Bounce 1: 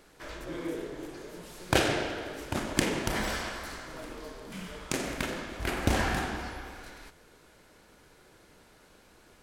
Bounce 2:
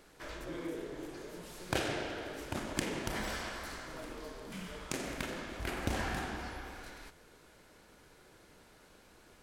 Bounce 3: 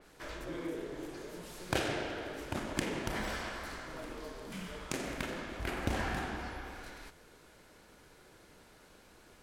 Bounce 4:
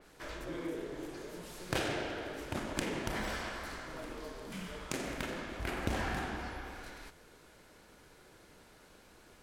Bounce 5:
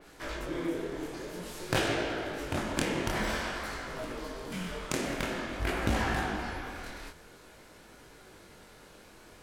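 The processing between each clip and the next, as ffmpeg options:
-af "acompressor=threshold=-39dB:ratio=1.5,volume=-2dB"
-af "adynamicequalizer=threshold=0.00224:dfrequency=3700:dqfactor=0.7:tfrequency=3700:tqfactor=0.7:attack=5:release=100:ratio=0.375:range=2:mode=cutabove:tftype=highshelf,volume=1dB"
-af "aeval=exprs='clip(val(0),-1,0.0316)':c=same"
-af "flanger=delay=17.5:depth=7.5:speed=0.5,volume=8.5dB"

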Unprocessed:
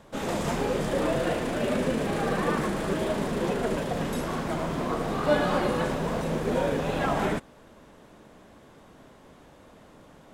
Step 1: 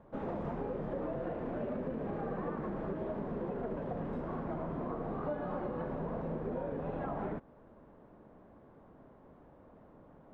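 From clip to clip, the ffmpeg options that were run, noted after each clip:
-af "lowpass=1.1k,acompressor=threshold=-29dB:ratio=6,volume=-5dB"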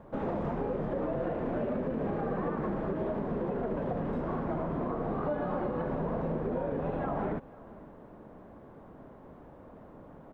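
-filter_complex "[0:a]asplit=2[a][b];[b]alimiter=level_in=9dB:limit=-24dB:level=0:latency=1:release=126,volume=-9dB,volume=2dB[c];[a][c]amix=inputs=2:normalize=0,aecho=1:1:497:0.0841"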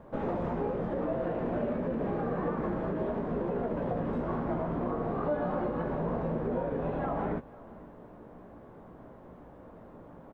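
-filter_complex "[0:a]asplit=2[a][b];[b]adelay=17,volume=-7.5dB[c];[a][c]amix=inputs=2:normalize=0"

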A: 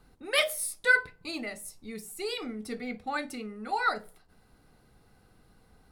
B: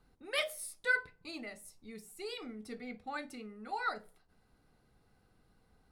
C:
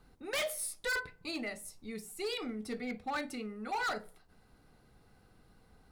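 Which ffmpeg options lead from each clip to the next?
-af "highshelf=f=11k:g=-6.5,volume=-8dB"
-af "asoftclip=type=hard:threshold=-37dB,volume=6dB"

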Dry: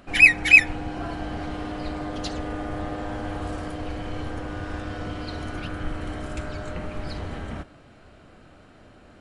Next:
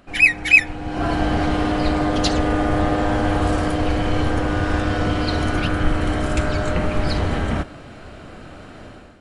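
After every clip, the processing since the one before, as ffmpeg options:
-af "dynaudnorm=f=130:g=5:m=13dB,volume=-1dB"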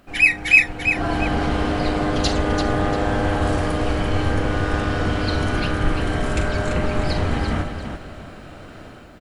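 -filter_complex "[0:a]acrusher=bits=10:mix=0:aa=0.000001,asplit=2[a][b];[b]aecho=0:1:42|340|687:0.282|0.447|0.141[c];[a][c]amix=inputs=2:normalize=0,volume=-1.5dB"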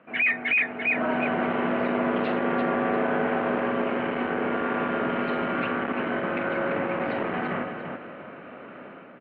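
-af "volume=18dB,asoftclip=hard,volume=-18dB,highpass=f=270:t=q:w=0.5412,highpass=f=270:t=q:w=1.307,lowpass=f=2.7k:t=q:w=0.5176,lowpass=f=2.7k:t=q:w=0.7071,lowpass=f=2.7k:t=q:w=1.932,afreqshift=-60"

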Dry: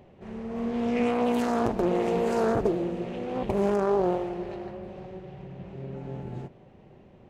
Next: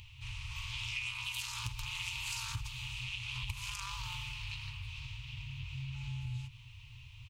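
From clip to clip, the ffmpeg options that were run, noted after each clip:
-af "afftfilt=real='re*(1-between(b*sr/4096,130,840))':imag='im*(1-between(b*sr/4096,130,840))':win_size=4096:overlap=0.75,firequalizer=gain_entry='entry(120,0);entry(440,-22);entry(1100,-12);entry(1700,-16);entry(2500,9);entry(5500,7)':delay=0.05:min_phase=1,acompressor=threshold=-45dB:ratio=4,volume=7.5dB"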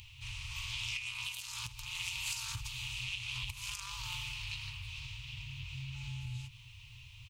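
-af "highshelf=f=2.8k:g=8,aeval=exprs='0.168*(cos(1*acos(clip(val(0)/0.168,-1,1)))-cos(1*PI/2))+0.0188*(cos(3*acos(clip(val(0)/0.168,-1,1)))-cos(3*PI/2))':c=same,alimiter=level_in=1.5dB:limit=-24dB:level=0:latency=1:release=331,volume=-1.5dB,volume=1.5dB"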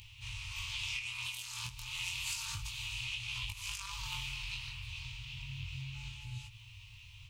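-af "flanger=delay=18.5:depth=6.4:speed=0.31,volume=3dB"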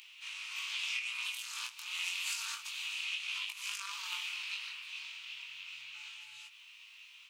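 -af "highpass=f=1.4k:t=q:w=2.2"

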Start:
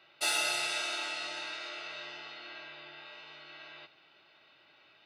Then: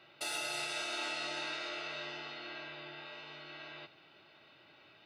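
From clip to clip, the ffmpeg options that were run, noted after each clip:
-af "lowshelf=f=460:g=9,alimiter=level_in=3.5dB:limit=-24dB:level=0:latency=1:release=361,volume=-3.5dB"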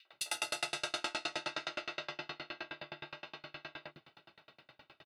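-filter_complex "[0:a]acrossover=split=350|2500[a][b][c];[b]adelay=50[d];[a]adelay=130[e];[e][d][c]amix=inputs=3:normalize=0,aeval=exprs='val(0)*pow(10,-33*if(lt(mod(9.6*n/s,1),2*abs(9.6)/1000),1-mod(9.6*n/s,1)/(2*abs(9.6)/1000),(mod(9.6*n/s,1)-2*abs(9.6)/1000)/(1-2*abs(9.6)/1000))/20)':c=same,volume=9.5dB"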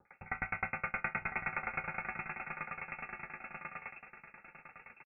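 -af "aecho=1:1:1004:0.335,lowpass=f=2.4k:t=q:w=0.5098,lowpass=f=2.4k:t=q:w=0.6013,lowpass=f=2.4k:t=q:w=0.9,lowpass=f=2.4k:t=q:w=2.563,afreqshift=-2800,volume=4dB"

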